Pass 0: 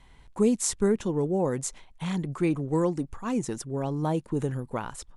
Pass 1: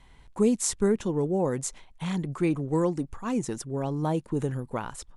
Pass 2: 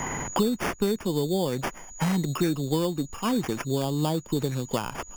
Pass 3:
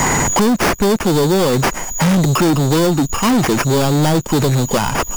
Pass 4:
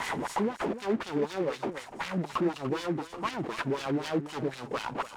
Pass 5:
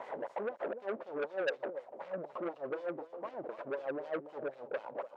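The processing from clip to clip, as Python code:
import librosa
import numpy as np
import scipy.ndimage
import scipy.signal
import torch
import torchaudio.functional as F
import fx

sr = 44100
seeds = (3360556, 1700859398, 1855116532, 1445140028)

y1 = x
y2 = fx.sample_hold(y1, sr, seeds[0], rate_hz=4000.0, jitter_pct=0)
y2 = y2 + 10.0 ** (-52.0 / 20.0) * np.sin(2.0 * np.pi * 6800.0 * np.arange(len(y2)) / sr)
y2 = fx.band_squash(y2, sr, depth_pct=100)
y3 = fx.leveller(y2, sr, passes=5)
y3 = y3 * 10.0 ** (1.5 / 20.0)
y4 = fx.wah_lfo(y3, sr, hz=4.0, low_hz=260.0, high_hz=3000.0, q=2.0)
y4 = y4 + 10.0 ** (-12.5 / 20.0) * np.pad(y4, (int(293 * sr / 1000.0), 0))[:len(y4)]
y4 = fx.noise_mod_delay(y4, sr, seeds[1], noise_hz=1300.0, depth_ms=0.034)
y4 = y4 * 10.0 ** (-9.0 / 20.0)
y5 = fx.bandpass_q(y4, sr, hz=560.0, q=5.4)
y5 = fx.transformer_sat(y5, sr, knee_hz=1800.0)
y5 = y5 * 10.0 ** (4.5 / 20.0)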